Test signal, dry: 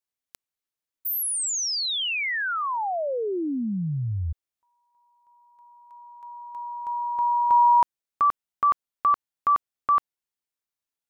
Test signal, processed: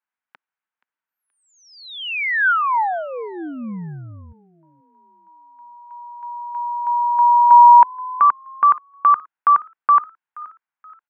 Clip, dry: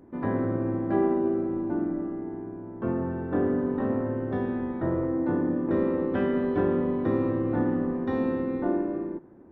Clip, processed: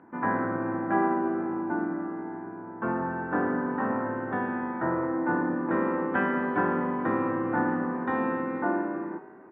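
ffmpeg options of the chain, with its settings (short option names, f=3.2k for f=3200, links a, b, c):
-filter_complex "[0:a]highpass=250,equalizer=f=270:t=q:w=4:g=-6,equalizer=f=390:t=q:w=4:g=-10,equalizer=f=570:t=q:w=4:g=-8,equalizer=f=920:t=q:w=4:g=5,equalizer=f=1.5k:t=q:w=4:g=7,lowpass=f=2.5k:w=0.5412,lowpass=f=2.5k:w=1.3066,asplit=4[a][b][c][d];[b]adelay=476,afreqshift=54,volume=-21.5dB[e];[c]adelay=952,afreqshift=108,volume=-30.6dB[f];[d]adelay=1428,afreqshift=162,volume=-39.7dB[g];[a][e][f][g]amix=inputs=4:normalize=0,volume=5.5dB"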